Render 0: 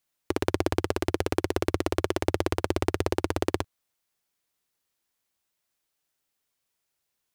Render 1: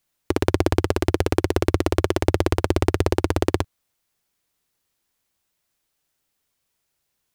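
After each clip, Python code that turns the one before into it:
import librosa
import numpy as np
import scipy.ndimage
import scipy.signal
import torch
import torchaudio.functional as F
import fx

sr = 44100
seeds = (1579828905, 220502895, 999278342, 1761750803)

y = fx.low_shelf(x, sr, hz=200.0, db=6.0)
y = y * librosa.db_to_amplitude(4.5)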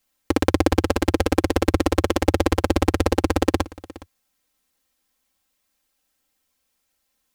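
y = x + 0.85 * np.pad(x, (int(3.8 * sr / 1000.0), 0))[:len(x)]
y = y + 10.0 ** (-20.0 / 20.0) * np.pad(y, (int(415 * sr / 1000.0), 0))[:len(y)]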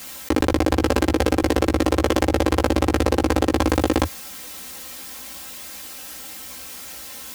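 y = scipy.signal.sosfilt(scipy.signal.butter(2, 56.0, 'highpass', fs=sr, output='sos'), x)
y = fx.doubler(y, sr, ms=16.0, db=-5.0)
y = fx.env_flatten(y, sr, amount_pct=100)
y = y * librosa.db_to_amplitude(-4.5)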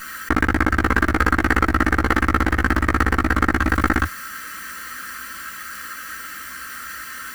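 y = fx.lower_of_two(x, sr, delay_ms=0.67)
y = fx.band_shelf(y, sr, hz=1600.0, db=15.5, octaves=1.1)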